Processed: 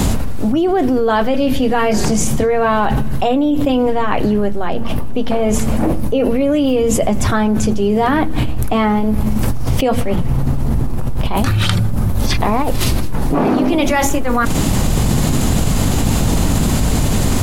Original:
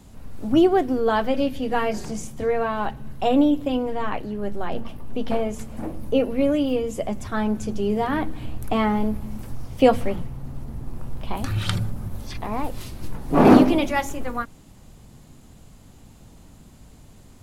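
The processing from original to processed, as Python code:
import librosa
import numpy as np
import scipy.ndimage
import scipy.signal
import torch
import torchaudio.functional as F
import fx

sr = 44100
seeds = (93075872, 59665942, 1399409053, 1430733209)

y = fx.env_flatten(x, sr, amount_pct=100)
y = y * librosa.db_to_amplitude(-5.0)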